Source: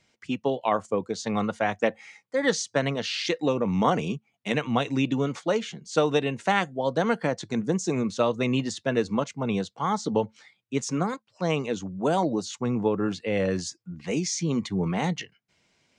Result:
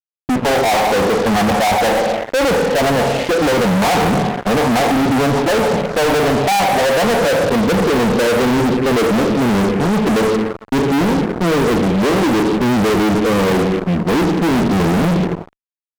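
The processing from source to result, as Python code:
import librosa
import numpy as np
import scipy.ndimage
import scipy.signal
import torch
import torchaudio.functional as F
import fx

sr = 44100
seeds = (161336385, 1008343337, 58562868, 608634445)

y = fx.rev_double_slope(x, sr, seeds[0], early_s=0.89, late_s=2.7, knee_db=-23, drr_db=7.0)
y = fx.filter_sweep_lowpass(y, sr, from_hz=780.0, to_hz=370.0, start_s=6.42, end_s=9.2, q=3.1)
y = fx.fuzz(y, sr, gain_db=43.0, gate_db=-46.0)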